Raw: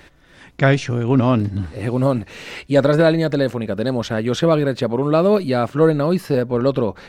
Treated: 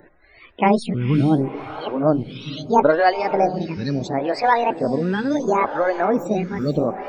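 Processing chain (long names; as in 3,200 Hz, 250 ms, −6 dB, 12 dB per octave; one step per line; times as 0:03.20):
pitch shifter swept by a sawtooth +9 semitones, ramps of 941 ms
spectral peaks only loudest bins 64
on a send: feedback delay with all-pass diffusion 470 ms, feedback 41%, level −12.5 dB
on the sum: phaser with staggered stages 0.73 Hz
level +2 dB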